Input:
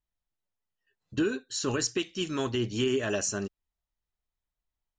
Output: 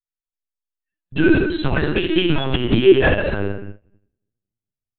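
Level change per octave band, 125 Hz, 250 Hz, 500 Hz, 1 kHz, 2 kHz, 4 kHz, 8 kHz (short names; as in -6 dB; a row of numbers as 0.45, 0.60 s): +14.0 dB, +13.0 dB, +13.5 dB, +11.5 dB, +15.0 dB, +9.0 dB, under -40 dB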